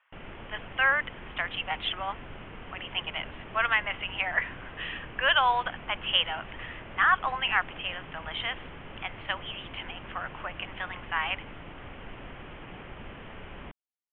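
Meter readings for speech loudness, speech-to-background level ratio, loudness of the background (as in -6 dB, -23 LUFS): -29.0 LUFS, 15.5 dB, -44.5 LUFS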